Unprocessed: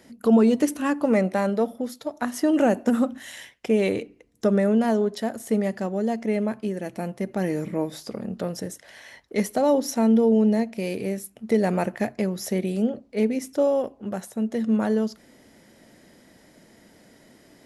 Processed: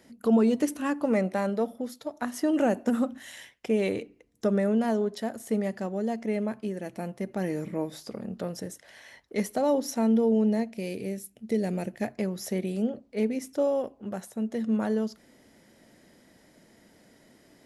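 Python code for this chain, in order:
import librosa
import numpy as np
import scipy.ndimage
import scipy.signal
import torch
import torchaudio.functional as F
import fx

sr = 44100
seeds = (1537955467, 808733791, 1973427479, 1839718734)

y = fx.peak_eq(x, sr, hz=1100.0, db=fx.line((10.68, -4.5), (12.01, -15.0)), octaves=1.4, at=(10.68, 12.01), fade=0.02)
y = y * 10.0 ** (-4.5 / 20.0)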